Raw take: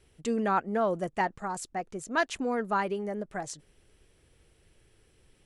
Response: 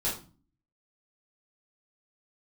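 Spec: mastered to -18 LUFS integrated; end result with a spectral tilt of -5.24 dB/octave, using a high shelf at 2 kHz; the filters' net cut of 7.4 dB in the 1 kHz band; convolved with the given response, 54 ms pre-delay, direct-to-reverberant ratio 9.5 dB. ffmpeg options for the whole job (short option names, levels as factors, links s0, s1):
-filter_complex "[0:a]equalizer=f=1000:t=o:g=-9,highshelf=f=2000:g=-5,asplit=2[s0][s1];[1:a]atrim=start_sample=2205,adelay=54[s2];[s1][s2]afir=irnorm=-1:irlink=0,volume=0.158[s3];[s0][s3]amix=inputs=2:normalize=0,volume=5.96"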